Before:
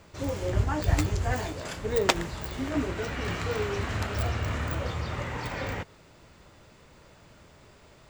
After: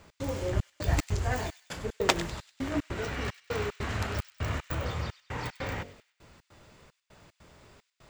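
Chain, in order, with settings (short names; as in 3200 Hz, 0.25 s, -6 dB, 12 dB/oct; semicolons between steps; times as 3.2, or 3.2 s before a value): de-hum 47.08 Hz, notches 15; step gate "x.xxxx..x" 150 bpm -60 dB; on a send: thin delay 98 ms, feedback 42%, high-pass 2600 Hz, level -13 dB; on the sum: gain -1 dB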